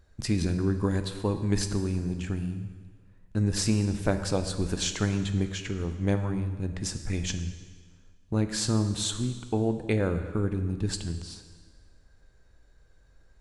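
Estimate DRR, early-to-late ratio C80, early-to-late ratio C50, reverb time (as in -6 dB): 8.0 dB, 10.5 dB, 9.5 dB, 1.6 s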